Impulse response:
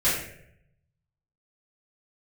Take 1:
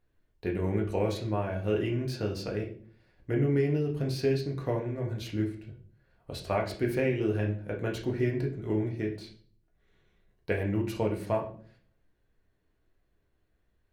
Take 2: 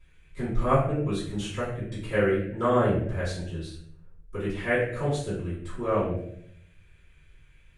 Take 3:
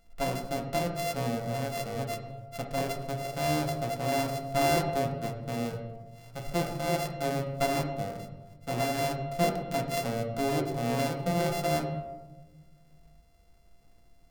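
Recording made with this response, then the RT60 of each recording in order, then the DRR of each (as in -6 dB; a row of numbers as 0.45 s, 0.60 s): 2; 0.50 s, 0.70 s, 1.2 s; -0.5 dB, -13.0 dB, 1.5 dB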